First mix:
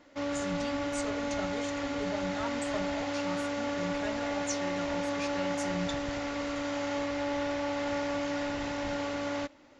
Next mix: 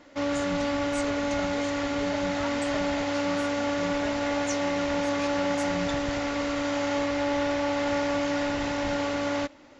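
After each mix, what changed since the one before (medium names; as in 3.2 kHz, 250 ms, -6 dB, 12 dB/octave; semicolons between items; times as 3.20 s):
background +5.5 dB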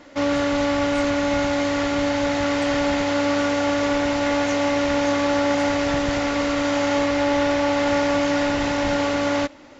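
speech: add rippled Chebyshev high-pass 950 Hz, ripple 9 dB; background +6.5 dB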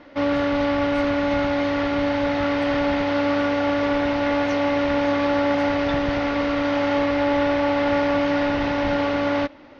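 speech +6.5 dB; master: add boxcar filter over 6 samples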